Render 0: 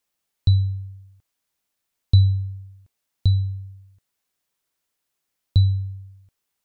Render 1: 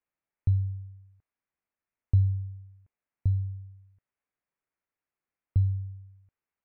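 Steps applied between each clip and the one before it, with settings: steep low-pass 2500 Hz 48 dB/oct; gain -7.5 dB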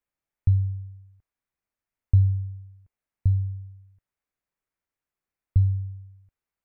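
low shelf 84 Hz +9.5 dB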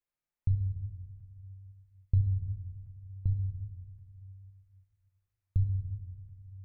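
shoebox room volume 1100 m³, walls mixed, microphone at 0.88 m; gain -6.5 dB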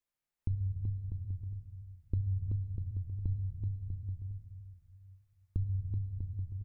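compressor, threshold -29 dBFS, peak gain reduction 8.5 dB; bouncing-ball echo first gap 0.38 s, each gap 0.7×, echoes 5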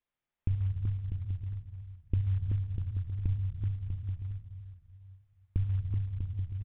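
short-mantissa float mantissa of 4-bit; air absorption 83 m; downsampling 8000 Hz; gain +3.5 dB

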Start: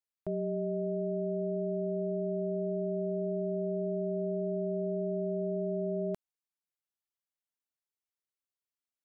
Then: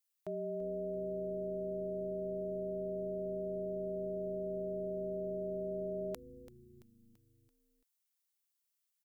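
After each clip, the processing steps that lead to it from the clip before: tilt +3.5 dB/oct; frequency-shifting echo 0.336 s, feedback 53%, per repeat -130 Hz, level -16 dB; gain -1.5 dB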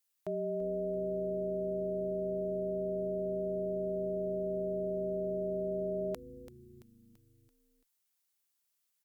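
one-sided clip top -25.5 dBFS; gain +4 dB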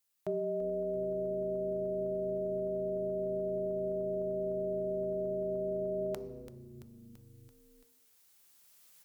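recorder AGC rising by 6.7 dB/s; on a send at -9.5 dB: reverb RT60 1.0 s, pre-delay 3 ms

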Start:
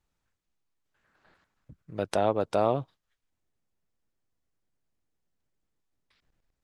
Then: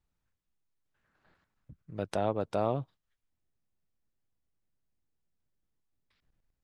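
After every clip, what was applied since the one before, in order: tone controls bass +5 dB, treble -2 dB; gain -5.5 dB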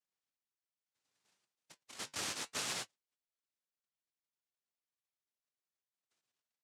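comb 6.7 ms; noise vocoder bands 1; flange 0.7 Hz, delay 4.7 ms, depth 5.7 ms, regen -66%; gain -7 dB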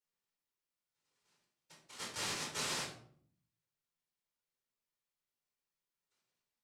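shoebox room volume 770 m³, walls furnished, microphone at 4.5 m; gain -4.5 dB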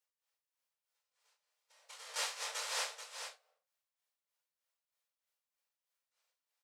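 tremolo 3.2 Hz, depth 78%; brick-wall FIR high-pass 440 Hz; echo 0.434 s -8.5 dB; gain +4 dB

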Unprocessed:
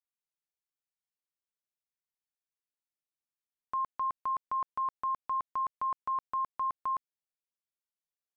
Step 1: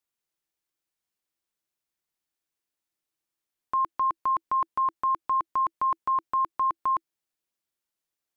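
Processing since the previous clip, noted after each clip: bell 330 Hz +7.5 dB 0.22 oct; gain +7 dB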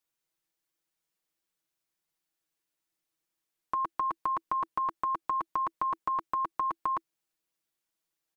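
comb 6.2 ms, depth 59%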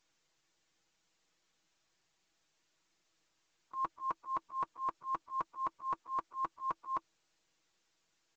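bin magnitudes rounded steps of 15 dB; auto swell 0.124 s; gain -2 dB; µ-law 128 kbps 16000 Hz

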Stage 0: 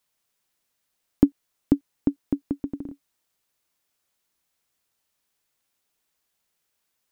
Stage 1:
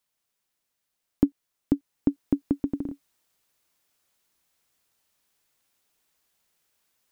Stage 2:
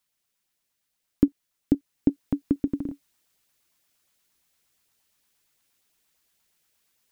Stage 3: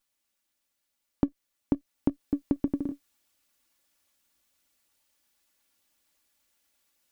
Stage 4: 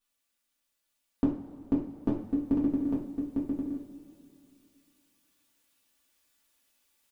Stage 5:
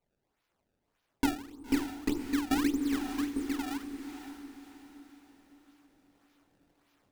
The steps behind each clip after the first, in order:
vocal rider 0.5 s; gain -1.5 dB
LFO notch saw up 8.6 Hz 330–1500 Hz; gain +2 dB
minimum comb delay 3.5 ms; compressor, threshold -21 dBFS, peak gain reduction 8.5 dB
echo 0.852 s -4 dB; reverb, pre-delay 3 ms, DRR -6 dB; gain -7 dB
fixed phaser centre 610 Hz, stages 6; decimation with a swept rate 24×, swing 160% 1.7 Hz; diffused feedback echo 0.555 s, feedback 43%, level -9.5 dB

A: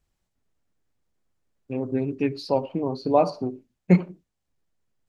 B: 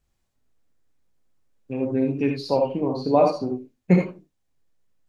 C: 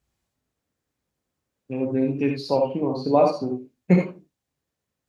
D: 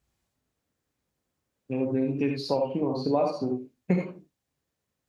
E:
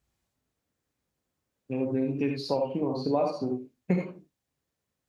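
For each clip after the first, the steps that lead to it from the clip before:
non-linear reverb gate 0.1 s rising, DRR 2 dB
HPF 57 Hz
compressor 3:1, threshold -23 dBFS, peak gain reduction 9 dB
short-mantissa float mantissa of 8-bit; gain -1.5 dB

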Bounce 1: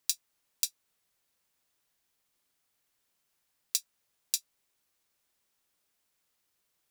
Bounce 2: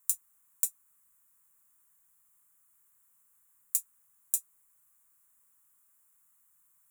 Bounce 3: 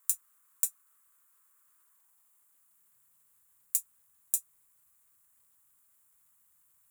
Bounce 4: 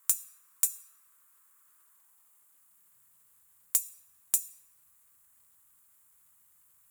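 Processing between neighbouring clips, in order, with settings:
limiter -12.5 dBFS, peak gain reduction 8 dB; EQ curve 190 Hz 0 dB, 430 Hz -28 dB, 1100 Hz +5 dB, 5000 Hz -18 dB, 7300 Hz +7 dB, 11000 Hz +10 dB; gain +2 dB
high-pass sweep 1200 Hz -> 65 Hz, 1.87–3.31; crackle 340/s -69 dBFS
on a send at -11 dB: reverb RT60 1.1 s, pre-delay 17 ms; on the sum: sine folder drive 5 dB, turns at -1 dBFS; gain -5 dB

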